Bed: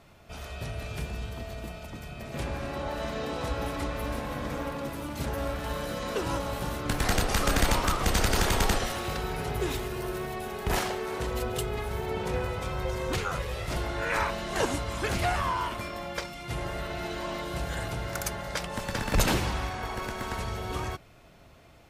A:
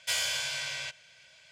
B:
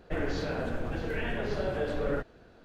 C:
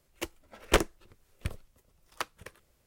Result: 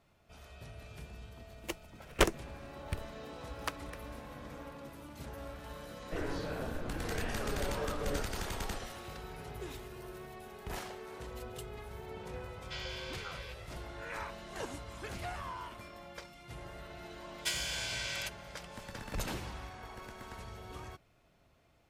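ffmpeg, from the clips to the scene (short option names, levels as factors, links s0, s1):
-filter_complex "[1:a]asplit=2[s0][s1];[0:a]volume=0.211[s2];[s0]lowpass=f=4900:w=0.5412,lowpass=f=4900:w=1.3066[s3];[s1]acompressor=threshold=0.0178:ratio=6:attack=85:release=363:knee=1:detection=peak[s4];[3:a]atrim=end=2.86,asetpts=PTS-STARTPTS,volume=0.708,afade=t=in:d=0.004:c=hsin,afade=t=out:st=2.856:d=0.004:c=hsin,adelay=1470[s5];[2:a]atrim=end=2.64,asetpts=PTS-STARTPTS,volume=0.447,afade=t=in:d=0.004:c=hsin,afade=t=out:st=2.636:d=0.004:c=hsin,adelay=6010[s6];[s3]atrim=end=1.51,asetpts=PTS-STARTPTS,volume=0.251,afade=t=in:d=0.004:c=hsin,afade=t=out:st=1.506:d=0.004:c=hsin,adelay=12630[s7];[s4]atrim=end=1.51,asetpts=PTS-STARTPTS,volume=0.794,afade=t=in:d=0.004:c=hsin,afade=t=out:st=1.506:d=0.004:c=hsin,adelay=17380[s8];[s2][s5][s6][s7][s8]amix=inputs=5:normalize=0"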